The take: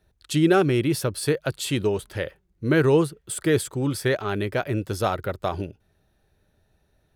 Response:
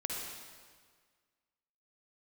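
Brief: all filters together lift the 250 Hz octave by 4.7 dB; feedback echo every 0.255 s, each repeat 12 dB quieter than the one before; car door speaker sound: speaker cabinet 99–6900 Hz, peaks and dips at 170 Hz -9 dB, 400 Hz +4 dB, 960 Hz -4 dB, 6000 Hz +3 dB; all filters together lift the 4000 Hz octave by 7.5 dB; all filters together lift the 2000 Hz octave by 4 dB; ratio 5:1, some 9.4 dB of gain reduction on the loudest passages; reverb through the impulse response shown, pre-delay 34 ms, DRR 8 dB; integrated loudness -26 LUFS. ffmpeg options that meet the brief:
-filter_complex "[0:a]equalizer=f=250:t=o:g=6.5,equalizer=f=2k:t=o:g=3.5,equalizer=f=4k:t=o:g=8,acompressor=threshold=-21dB:ratio=5,aecho=1:1:255|510|765:0.251|0.0628|0.0157,asplit=2[a][b];[1:a]atrim=start_sample=2205,adelay=34[c];[b][c]afir=irnorm=-1:irlink=0,volume=-11dB[d];[a][d]amix=inputs=2:normalize=0,highpass=99,equalizer=f=170:t=q:w=4:g=-9,equalizer=f=400:t=q:w=4:g=4,equalizer=f=960:t=q:w=4:g=-4,equalizer=f=6k:t=q:w=4:g=3,lowpass=f=6.9k:w=0.5412,lowpass=f=6.9k:w=1.3066,volume=-1dB"

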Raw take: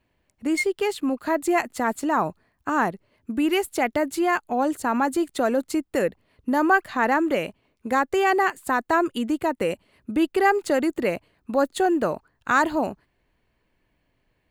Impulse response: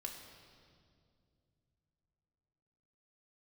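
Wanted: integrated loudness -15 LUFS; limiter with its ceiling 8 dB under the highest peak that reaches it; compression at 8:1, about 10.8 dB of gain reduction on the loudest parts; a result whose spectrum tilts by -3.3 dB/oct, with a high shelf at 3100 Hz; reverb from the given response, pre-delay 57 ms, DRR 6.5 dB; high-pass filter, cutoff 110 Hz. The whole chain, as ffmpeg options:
-filter_complex "[0:a]highpass=110,highshelf=f=3.1k:g=5,acompressor=threshold=-24dB:ratio=8,alimiter=limit=-19dB:level=0:latency=1,asplit=2[a][b];[1:a]atrim=start_sample=2205,adelay=57[c];[b][c]afir=irnorm=-1:irlink=0,volume=-4dB[d];[a][d]amix=inputs=2:normalize=0,volume=14.5dB"

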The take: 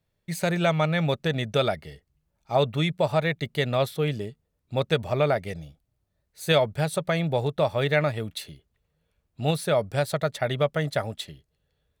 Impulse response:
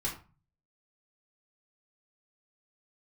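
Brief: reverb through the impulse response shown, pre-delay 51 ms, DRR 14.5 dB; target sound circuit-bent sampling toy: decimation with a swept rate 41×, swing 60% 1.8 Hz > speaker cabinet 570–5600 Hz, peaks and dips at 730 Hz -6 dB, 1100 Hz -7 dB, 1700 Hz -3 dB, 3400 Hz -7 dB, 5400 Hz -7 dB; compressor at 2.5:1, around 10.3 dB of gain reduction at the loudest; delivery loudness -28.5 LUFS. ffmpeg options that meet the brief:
-filter_complex "[0:a]acompressor=threshold=-33dB:ratio=2.5,asplit=2[a][b];[1:a]atrim=start_sample=2205,adelay=51[c];[b][c]afir=irnorm=-1:irlink=0,volume=-18dB[d];[a][d]amix=inputs=2:normalize=0,acrusher=samples=41:mix=1:aa=0.000001:lfo=1:lforange=24.6:lforate=1.8,highpass=570,equalizer=f=730:t=q:w=4:g=-6,equalizer=f=1.1k:t=q:w=4:g=-7,equalizer=f=1.7k:t=q:w=4:g=-3,equalizer=f=3.4k:t=q:w=4:g=-7,equalizer=f=5.4k:t=q:w=4:g=-7,lowpass=f=5.6k:w=0.5412,lowpass=f=5.6k:w=1.3066,volume=13dB"

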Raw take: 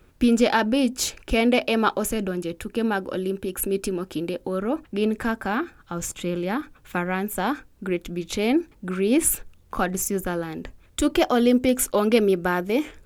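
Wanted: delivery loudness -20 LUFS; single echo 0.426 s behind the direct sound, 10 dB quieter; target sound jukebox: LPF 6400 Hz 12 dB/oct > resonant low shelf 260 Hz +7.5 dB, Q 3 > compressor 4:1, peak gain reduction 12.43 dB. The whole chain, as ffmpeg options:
-af "lowpass=6.4k,lowshelf=f=260:t=q:w=3:g=7.5,aecho=1:1:426:0.316,acompressor=threshold=-22dB:ratio=4,volume=5.5dB"

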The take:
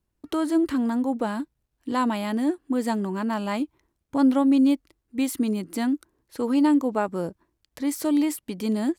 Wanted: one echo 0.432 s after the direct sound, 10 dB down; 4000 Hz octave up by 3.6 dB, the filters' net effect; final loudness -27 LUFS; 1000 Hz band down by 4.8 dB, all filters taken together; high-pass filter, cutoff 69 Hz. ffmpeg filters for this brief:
-af "highpass=69,equalizer=f=1k:t=o:g=-6,equalizer=f=4k:t=o:g=5,aecho=1:1:432:0.316,volume=-2dB"

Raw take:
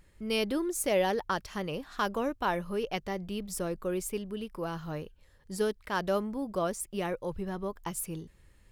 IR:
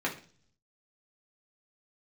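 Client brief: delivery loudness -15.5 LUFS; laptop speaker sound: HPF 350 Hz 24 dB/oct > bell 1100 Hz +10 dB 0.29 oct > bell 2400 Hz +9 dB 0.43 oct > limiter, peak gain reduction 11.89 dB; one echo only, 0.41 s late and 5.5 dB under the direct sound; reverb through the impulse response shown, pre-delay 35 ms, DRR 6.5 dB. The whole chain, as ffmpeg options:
-filter_complex "[0:a]aecho=1:1:410:0.531,asplit=2[a][b];[1:a]atrim=start_sample=2205,adelay=35[c];[b][c]afir=irnorm=-1:irlink=0,volume=-14dB[d];[a][d]amix=inputs=2:normalize=0,highpass=f=350:w=0.5412,highpass=f=350:w=1.3066,equalizer=f=1.1k:t=o:w=0.29:g=10,equalizer=f=2.4k:t=o:w=0.43:g=9,volume=19dB,alimiter=limit=-4.5dB:level=0:latency=1"

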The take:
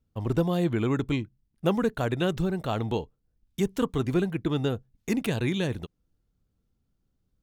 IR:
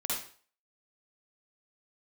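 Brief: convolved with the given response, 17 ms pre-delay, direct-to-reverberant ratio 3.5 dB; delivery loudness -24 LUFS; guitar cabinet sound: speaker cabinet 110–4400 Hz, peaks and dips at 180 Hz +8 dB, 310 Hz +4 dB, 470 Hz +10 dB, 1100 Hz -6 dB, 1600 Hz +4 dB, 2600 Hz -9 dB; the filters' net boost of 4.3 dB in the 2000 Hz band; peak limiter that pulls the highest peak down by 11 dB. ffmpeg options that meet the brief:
-filter_complex "[0:a]equalizer=f=2k:t=o:g=5.5,alimiter=limit=-22dB:level=0:latency=1,asplit=2[a][b];[1:a]atrim=start_sample=2205,adelay=17[c];[b][c]afir=irnorm=-1:irlink=0,volume=-8.5dB[d];[a][d]amix=inputs=2:normalize=0,highpass=110,equalizer=f=180:t=q:w=4:g=8,equalizer=f=310:t=q:w=4:g=4,equalizer=f=470:t=q:w=4:g=10,equalizer=f=1.1k:t=q:w=4:g=-6,equalizer=f=1.6k:t=q:w=4:g=4,equalizer=f=2.6k:t=q:w=4:g=-9,lowpass=f=4.4k:w=0.5412,lowpass=f=4.4k:w=1.3066,volume=3.5dB"

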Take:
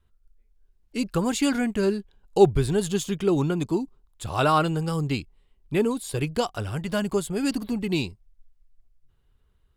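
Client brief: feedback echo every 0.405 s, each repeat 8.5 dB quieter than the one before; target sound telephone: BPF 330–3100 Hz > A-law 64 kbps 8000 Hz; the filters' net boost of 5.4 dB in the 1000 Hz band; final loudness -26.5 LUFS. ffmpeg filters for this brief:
-af "highpass=330,lowpass=3.1k,equalizer=f=1k:t=o:g=7,aecho=1:1:405|810|1215|1620:0.376|0.143|0.0543|0.0206,volume=-1dB" -ar 8000 -c:a pcm_alaw

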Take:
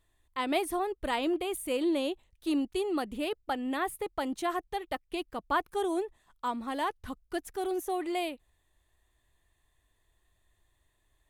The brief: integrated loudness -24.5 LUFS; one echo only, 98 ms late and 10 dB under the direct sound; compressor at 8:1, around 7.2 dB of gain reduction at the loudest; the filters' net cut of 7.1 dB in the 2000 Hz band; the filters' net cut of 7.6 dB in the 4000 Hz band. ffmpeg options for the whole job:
-af "equalizer=f=2k:t=o:g=-7.5,equalizer=f=4k:t=o:g=-7,acompressor=threshold=-33dB:ratio=8,aecho=1:1:98:0.316,volume=13.5dB"

